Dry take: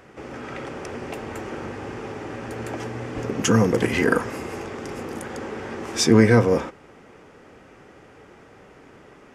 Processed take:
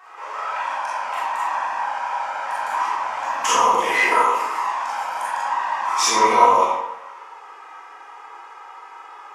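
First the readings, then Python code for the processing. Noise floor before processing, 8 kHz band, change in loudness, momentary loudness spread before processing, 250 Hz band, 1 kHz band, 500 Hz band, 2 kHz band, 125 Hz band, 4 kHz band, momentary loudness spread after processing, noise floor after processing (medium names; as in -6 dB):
-50 dBFS, +4.5 dB, +3.5 dB, 17 LU, -15.0 dB, +16.0 dB, -3.0 dB, +5.0 dB, under -25 dB, +4.0 dB, 24 LU, -42 dBFS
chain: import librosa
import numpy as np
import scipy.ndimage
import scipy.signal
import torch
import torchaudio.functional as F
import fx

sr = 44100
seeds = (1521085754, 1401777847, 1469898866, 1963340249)

y = fx.highpass_res(x, sr, hz=990.0, q=8.3)
y = fx.env_flanger(y, sr, rest_ms=2.8, full_db=-18.0)
y = fx.rev_freeverb(y, sr, rt60_s=0.88, hf_ratio=0.8, predelay_ms=0, drr_db=-9.0)
y = F.gain(torch.from_numpy(y), -1.0).numpy()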